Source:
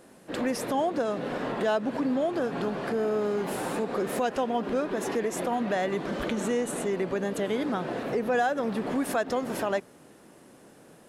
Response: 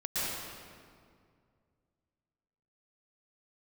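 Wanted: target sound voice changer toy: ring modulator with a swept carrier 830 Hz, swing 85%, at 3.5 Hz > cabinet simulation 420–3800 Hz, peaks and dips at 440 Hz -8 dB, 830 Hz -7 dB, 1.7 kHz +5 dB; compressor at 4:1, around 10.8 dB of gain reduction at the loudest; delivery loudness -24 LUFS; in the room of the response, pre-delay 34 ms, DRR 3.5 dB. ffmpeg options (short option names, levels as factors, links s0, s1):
-filter_complex "[0:a]acompressor=threshold=0.0158:ratio=4,asplit=2[s0][s1];[1:a]atrim=start_sample=2205,adelay=34[s2];[s1][s2]afir=irnorm=-1:irlink=0,volume=0.282[s3];[s0][s3]amix=inputs=2:normalize=0,aeval=exprs='val(0)*sin(2*PI*830*n/s+830*0.85/3.5*sin(2*PI*3.5*n/s))':c=same,highpass=420,equalizer=f=440:t=q:w=4:g=-8,equalizer=f=830:t=q:w=4:g=-7,equalizer=f=1700:t=q:w=4:g=5,lowpass=f=3800:w=0.5412,lowpass=f=3800:w=1.3066,volume=5.62"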